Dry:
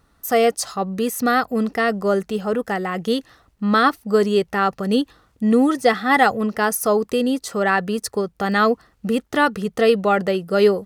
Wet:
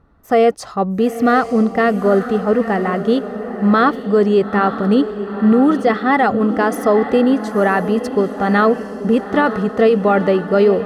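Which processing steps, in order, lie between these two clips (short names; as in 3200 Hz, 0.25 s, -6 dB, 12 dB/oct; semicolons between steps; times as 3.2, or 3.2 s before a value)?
LPF 1300 Hz 6 dB/oct; limiter -12 dBFS, peak gain reduction 7 dB; diffused feedback echo 0.9 s, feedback 48%, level -10.5 dB; mismatched tape noise reduction decoder only; gain +6.5 dB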